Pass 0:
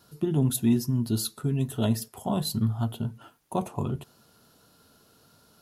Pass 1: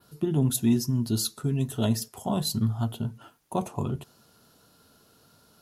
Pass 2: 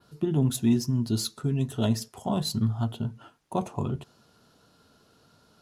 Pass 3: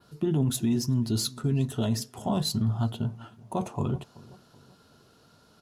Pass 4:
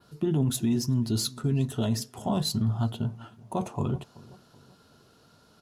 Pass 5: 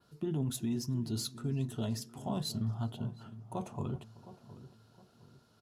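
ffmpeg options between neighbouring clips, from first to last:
-af "adynamicequalizer=threshold=0.00282:dfrequency=6100:dqfactor=1.4:tfrequency=6100:tqfactor=1.4:attack=5:release=100:ratio=0.375:range=3:mode=boostabove:tftype=bell"
-af "adynamicsmooth=sensitivity=6.5:basefreq=8k"
-filter_complex "[0:a]asplit=2[a][b];[b]adelay=380,lowpass=f=1.9k:p=1,volume=-22dB,asplit=2[c][d];[d]adelay=380,lowpass=f=1.9k:p=1,volume=0.45,asplit=2[e][f];[f]adelay=380,lowpass=f=1.9k:p=1,volume=0.45[g];[a][c][e][g]amix=inputs=4:normalize=0,alimiter=limit=-19.5dB:level=0:latency=1:release=12,volume=1.5dB"
-af anull
-filter_complex "[0:a]asplit=2[a][b];[b]adelay=714,lowpass=f=1.3k:p=1,volume=-15dB,asplit=2[c][d];[d]adelay=714,lowpass=f=1.3k:p=1,volume=0.41,asplit=2[e][f];[f]adelay=714,lowpass=f=1.3k:p=1,volume=0.41,asplit=2[g][h];[h]adelay=714,lowpass=f=1.3k:p=1,volume=0.41[i];[a][c][e][g][i]amix=inputs=5:normalize=0,volume=-8.5dB"

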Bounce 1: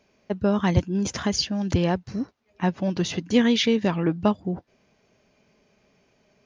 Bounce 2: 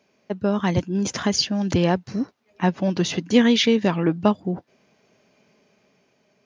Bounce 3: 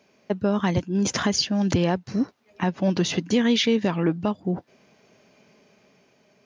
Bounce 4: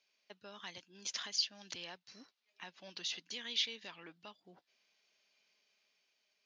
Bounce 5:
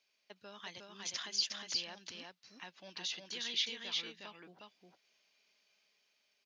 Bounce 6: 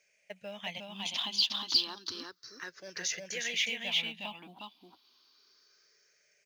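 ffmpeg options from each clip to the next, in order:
-af "highpass=130,dynaudnorm=f=210:g=9:m=4dB"
-af "alimiter=limit=-15dB:level=0:latency=1:release=428,volume=3.5dB"
-af "bandpass=f=4k:t=q:w=1.5:csg=0,volume=-8dB"
-af "aecho=1:1:360:0.708"
-filter_complex "[0:a]afftfilt=real='re*pow(10,17/40*sin(2*PI*(0.53*log(max(b,1)*sr/1024/100)/log(2)-(0.31)*(pts-256)/sr)))':imag='im*pow(10,17/40*sin(2*PI*(0.53*log(max(b,1)*sr/1024/100)/log(2)-(0.31)*(pts-256)/sr)))':win_size=1024:overlap=0.75,asplit=2[a][b];[b]acrusher=bits=5:mode=log:mix=0:aa=0.000001,volume=-3dB[c];[a][c]amix=inputs=2:normalize=0"

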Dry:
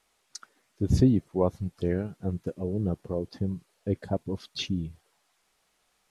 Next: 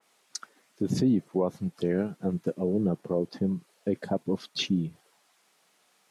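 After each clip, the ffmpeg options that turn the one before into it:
-af "alimiter=limit=-19.5dB:level=0:latency=1:release=34,highpass=f=150:w=0.5412,highpass=f=150:w=1.3066,adynamicequalizer=threshold=0.002:dfrequency=2300:dqfactor=0.7:tfrequency=2300:tqfactor=0.7:attack=5:release=100:ratio=0.375:range=2:mode=cutabove:tftype=highshelf,volume=5dB"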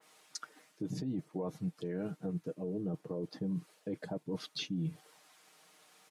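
-af "aecho=1:1:6.5:0.54,areverse,acompressor=threshold=-32dB:ratio=6,areverse,alimiter=level_in=7dB:limit=-24dB:level=0:latency=1:release=261,volume=-7dB,volume=2.5dB"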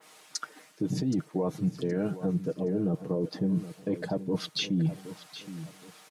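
-af "aecho=1:1:771|1542|2313:0.211|0.0676|0.0216,volume=8.5dB"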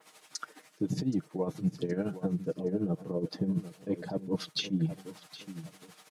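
-af "tremolo=f=12:d=0.64"

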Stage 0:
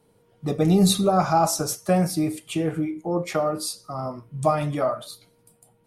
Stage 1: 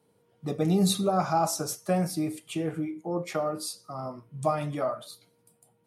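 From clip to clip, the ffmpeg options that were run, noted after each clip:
-af "highpass=100,volume=-5.5dB"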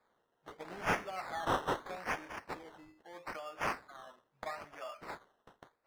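-filter_complex "[0:a]aderivative,acrusher=samples=15:mix=1:aa=0.000001:lfo=1:lforange=9:lforate=0.78,asplit=2[a][b];[b]highpass=f=720:p=1,volume=11dB,asoftclip=type=tanh:threshold=-20dB[c];[a][c]amix=inputs=2:normalize=0,lowpass=f=1.5k:p=1,volume=-6dB,volume=1dB"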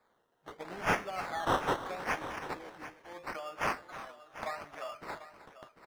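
-af "aecho=1:1:311|743:0.178|0.211,volume=3dB"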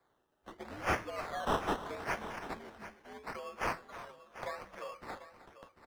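-af "afreqshift=-96,volume=-2.5dB"

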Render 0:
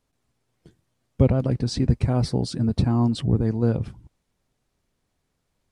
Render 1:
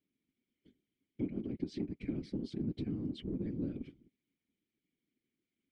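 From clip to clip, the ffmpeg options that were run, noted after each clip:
-filter_complex "[0:a]asplit=3[a][b][c];[a]bandpass=f=270:t=q:w=8,volume=0dB[d];[b]bandpass=f=2.29k:t=q:w=8,volume=-6dB[e];[c]bandpass=f=3.01k:t=q:w=8,volume=-9dB[f];[d][e][f]amix=inputs=3:normalize=0,acompressor=threshold=-34dB:ratio=10,afftfilt=real='hypot(re,im)*cos(2*PI*random(0))':imag='hypot(re,im)*sin(2*PI*random(1))':win_size=512:overlap=0.75,volume=6.5dB"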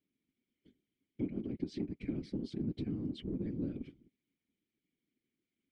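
-af anull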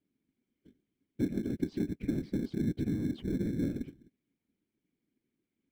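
-filter_complex "[0:a]highshelf=f=2.6k:g=-11.5,asplit=2[a][b];[b]acrusher=samples=23:mix=1:aa=0.000001,volume=-11dB[c];[a][c]amix=inputs=2:normalize=0,volume=3.5dB"

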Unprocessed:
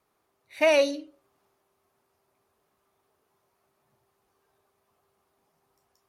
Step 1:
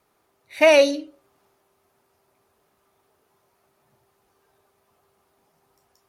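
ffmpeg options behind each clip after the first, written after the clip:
-af "bandreject=f=1.1k:w=22,volume=6.5dB"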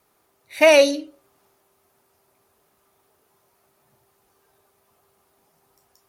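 -af "highshelf=f=6.9k:g=7,volume=1dB"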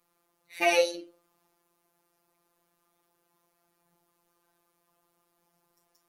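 -af "afftfilt=real='hypot(re,im)*cos(PI*b)':imag='0':win_size=1024:overlap=0.75,volume=-5dB"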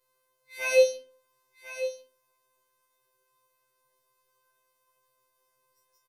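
-af "aecho=1:1:1046:0.251,afftfilt=real='re*2.45*eq(mod(b,6),0)':imag='im*2.45*eq(mod(b,6),0)':win_size=2048:overlap=0.75"

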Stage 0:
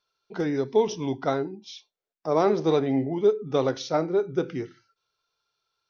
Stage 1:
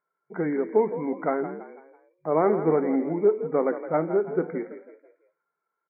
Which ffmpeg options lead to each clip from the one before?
-filter_complex "[0:a]afftfilt=real='re*between(b*sr/4096,140,2300)':imag='im*between(b*sr/4096,140,2300)':win_size=4096:overlap=0.75,asplit=5[a][b][c][d][e];[b]adelay=165,afreqshift=42,volume=-12dB[f];[c]adelay=330,afreqshift=84,volume=-19.7dB[g];[d]adelay=495,afreqshift=126,volume=-27.5dB[h];[e]adelay=660,afreqshift=168,volume=-35.2dB[i];[a][f][g][h][i]amix=inputs=5:normalize=0"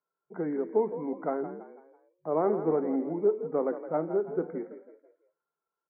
-filter_complex "[0:a]lowpass=1.2k,acrossover=split=140|610[a][b][c];[a]acompressor=threshold=-54dB:ratio=6[d];[d][b][c]amix=inputs=3:normalize=0,volume=-4.5dB"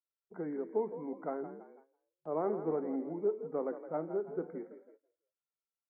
-af "agate=range=-12dB:threshold=-53dB:ratio=16:detection=peak,volume=-7dB"

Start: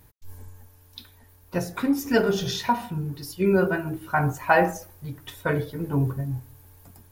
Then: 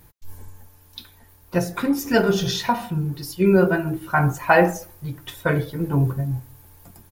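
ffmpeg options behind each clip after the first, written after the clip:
-af "aecho=1:1:5.8:0.32,volume=3.5dB"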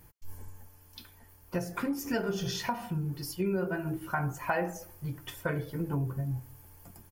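-af "bandreject=f=3.8k:w=5.4,acompressor=threshold=-25dB:ratio=3,volume=-5dB"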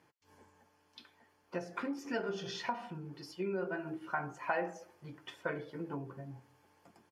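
-af "highpass=270,lowpass=4.4k,volume=-3.5dB"

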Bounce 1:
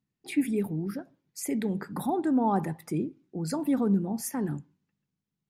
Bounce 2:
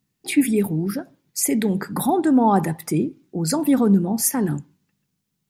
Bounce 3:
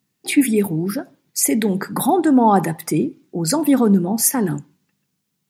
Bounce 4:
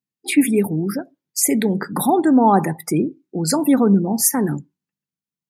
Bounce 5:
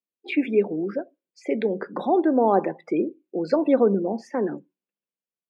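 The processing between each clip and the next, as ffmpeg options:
-af "highshelf=f=3.6k:g=7.5,volume=8.5dB"
-af "highpass=f=180:p=1,volume=4dB"
-af "afftdn=nr=20:nf=-35"
-af "dynaudnorm=f=220:g=5:m=4dB,highpass=f=260:w=0.5412,highpass=f=260:w=1.3066,equalizer=f=270:t=q:w=4:g=-7,equalizer=f=540:t=q:w=4:g=6,equalizer=f=870:t=q:w=4:g=-8,equalizer=f=1.3k:t=q:w=4:g=-8,equalizer=f=1.9k:t=q:w=4:g=-9,lowpass=f=2.8k:w=0.5412,lowpass=f=2.8k:w=1.3066,volume=-1.5dB"

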